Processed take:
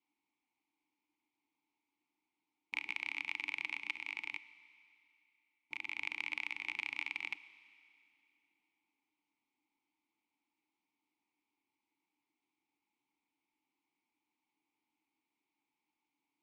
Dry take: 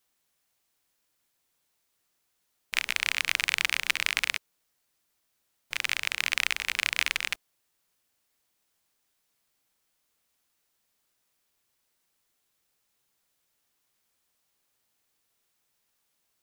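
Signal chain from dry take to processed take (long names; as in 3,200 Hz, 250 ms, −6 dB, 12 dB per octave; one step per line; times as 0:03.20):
0:03.79–0:05.97: output level in coarse steps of 12 dB
formant filter u
downward compressor, threshold −42 dBFS, peak gain reduction 9 dB
four-comb reverb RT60 2.7 s, combs from 28 ms, DRR 15 dB
level +8 dB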